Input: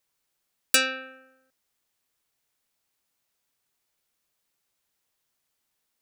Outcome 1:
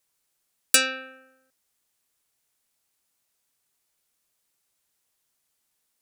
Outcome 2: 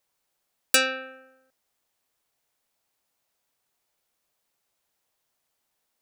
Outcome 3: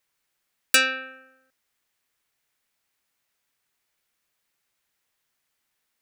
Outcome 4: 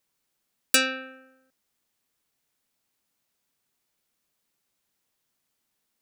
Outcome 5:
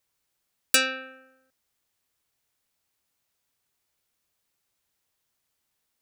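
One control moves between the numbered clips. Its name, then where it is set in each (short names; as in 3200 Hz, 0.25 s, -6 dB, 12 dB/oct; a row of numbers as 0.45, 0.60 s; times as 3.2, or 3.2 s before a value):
bell, frequency: 9600, 690, 1900, 220, 77 Hz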